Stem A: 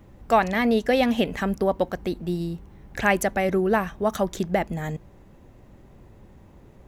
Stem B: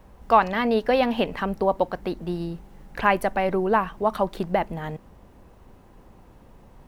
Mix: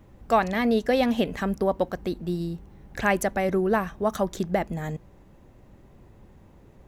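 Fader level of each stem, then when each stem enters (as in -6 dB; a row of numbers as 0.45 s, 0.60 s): -2.5 dB, -15.5 dB; 0.00 s, 0.00 s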